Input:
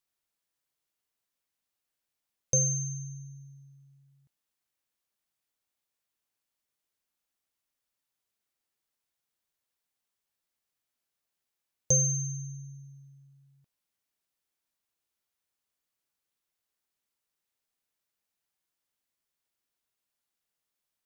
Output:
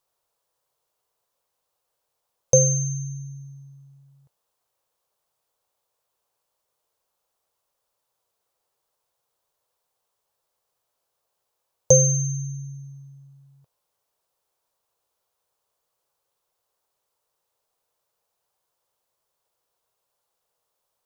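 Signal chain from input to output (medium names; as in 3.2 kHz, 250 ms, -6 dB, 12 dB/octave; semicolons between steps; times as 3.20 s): graphic EQ 125/250/500/1000/2000 Hz +4/-9/+11/+8/-6 dB; trim +6.5 dB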